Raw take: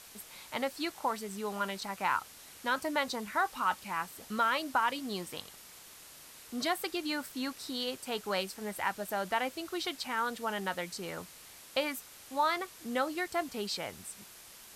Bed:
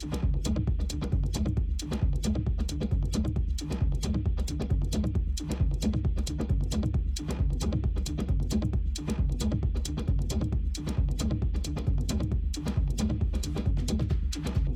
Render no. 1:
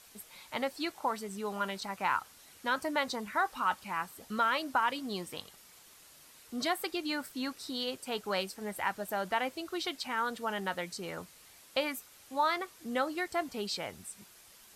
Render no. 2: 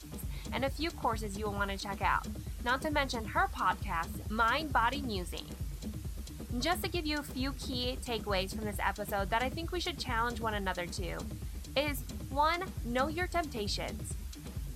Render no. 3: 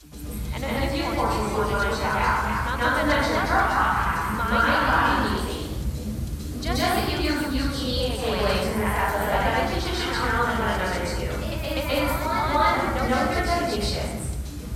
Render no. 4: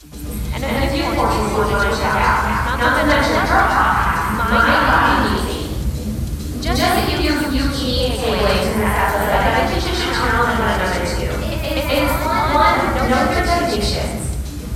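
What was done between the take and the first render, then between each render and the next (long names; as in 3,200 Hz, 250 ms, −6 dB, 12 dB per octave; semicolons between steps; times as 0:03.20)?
broadband denoise 6 dB, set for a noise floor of −53 dBFS
mix in bed −13 dB
dense smooth reverb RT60 1.1 s, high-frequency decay 0.55×, pre-delay 115 ms, DRR −8.5 dB; delay with pitch and tempo change per echo 410 ms, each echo +1 semitone, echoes 2, each echo −6 dB
level +7 dB; brickwall limiter −2 dBFS, peak gain reduction 1.5 dB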